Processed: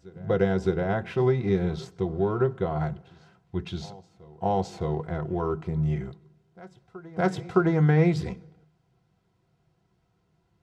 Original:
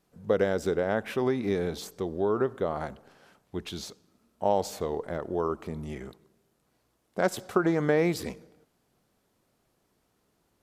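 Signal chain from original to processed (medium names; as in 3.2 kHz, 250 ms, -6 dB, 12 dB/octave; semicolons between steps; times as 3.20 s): resonant low shelf 200 Hz +6.5 dB, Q 3; comb of notches 580 Hz; in parallel at -12 dB: crossover distortion -41 dBFS; on the sum: distance through air 97 m; reverse echo 613 ms -21.5 dB; on a send at -6 dB: reverberation RT60 0.15 s, pre-delay 3 ms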